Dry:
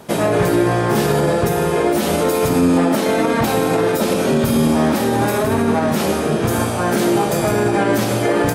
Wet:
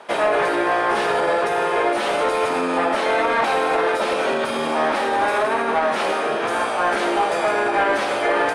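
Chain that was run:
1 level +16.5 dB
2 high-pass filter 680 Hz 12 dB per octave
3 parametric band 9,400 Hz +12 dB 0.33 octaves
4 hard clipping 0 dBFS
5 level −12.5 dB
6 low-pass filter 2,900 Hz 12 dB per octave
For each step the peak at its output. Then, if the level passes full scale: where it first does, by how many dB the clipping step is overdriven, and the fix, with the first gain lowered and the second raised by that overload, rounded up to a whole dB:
+11.5, +7.5, +10.0, 0.0, −12.5, −12.0 dBFS
step 1, 10.0 dB
step 1 +6.5 dB, step 5 −2.5 dB

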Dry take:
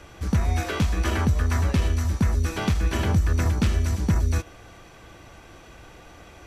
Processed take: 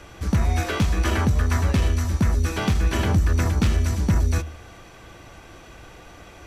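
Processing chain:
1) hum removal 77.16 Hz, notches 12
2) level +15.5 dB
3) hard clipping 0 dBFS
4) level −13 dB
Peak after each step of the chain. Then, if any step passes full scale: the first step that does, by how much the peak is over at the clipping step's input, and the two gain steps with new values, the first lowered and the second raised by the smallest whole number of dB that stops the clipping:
−11.0, +4.5, 0.0, −13.0 dBFS
step 2, 4.5 dB
step 2 +10.5 dB, step 4 −8 dB

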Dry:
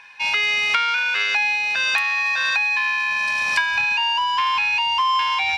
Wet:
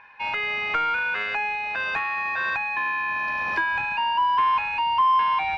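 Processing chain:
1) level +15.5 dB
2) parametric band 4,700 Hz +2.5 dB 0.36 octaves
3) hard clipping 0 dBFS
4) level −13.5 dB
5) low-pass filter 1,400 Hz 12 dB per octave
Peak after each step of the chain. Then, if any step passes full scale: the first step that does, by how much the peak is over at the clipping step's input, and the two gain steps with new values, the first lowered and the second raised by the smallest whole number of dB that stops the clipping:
+9.5, +10.0, 0.0, −13.5, −13.5 dBFS
step 1, 10.0 dB
step 1 +5.5 dB, step 4 −3.5 dB

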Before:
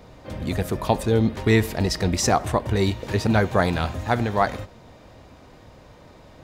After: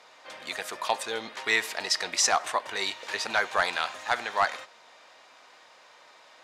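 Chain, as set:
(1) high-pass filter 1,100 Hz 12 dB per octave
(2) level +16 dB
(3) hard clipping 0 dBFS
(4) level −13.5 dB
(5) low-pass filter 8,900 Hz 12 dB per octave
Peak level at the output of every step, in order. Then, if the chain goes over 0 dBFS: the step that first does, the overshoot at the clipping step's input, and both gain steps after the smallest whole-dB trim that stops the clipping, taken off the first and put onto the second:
−10.0, +6.0, 0.0, −13.5, −12.5 dBFS
step 2, 6.0 dB
step 2 +10 dB, step 4 −7.5 dB

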